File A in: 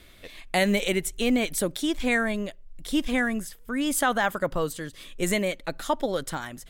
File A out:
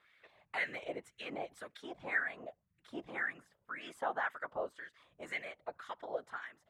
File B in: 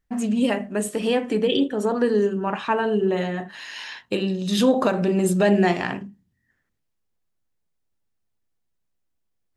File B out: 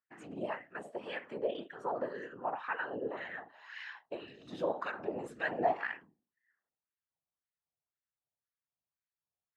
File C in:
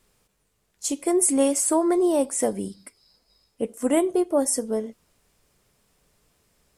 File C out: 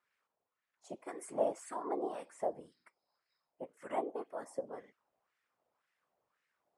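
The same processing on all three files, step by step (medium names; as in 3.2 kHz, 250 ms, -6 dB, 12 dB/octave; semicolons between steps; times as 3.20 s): whisper effect; wah-wah 1.9 Hz 690–1900 Hz, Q 2.5; trim -5.5 dB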